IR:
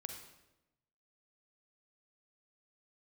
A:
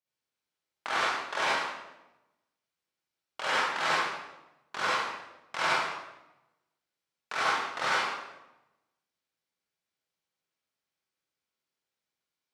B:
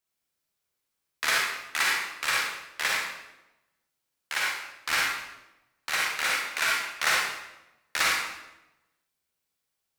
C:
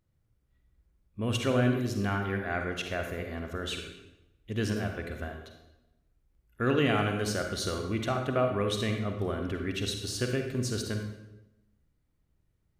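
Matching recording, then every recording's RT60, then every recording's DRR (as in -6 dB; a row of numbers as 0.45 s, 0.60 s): C; 0.95 s, 0.95 s, 0.95 s; -8.5 dB, -4.0 dB, 4.0 dB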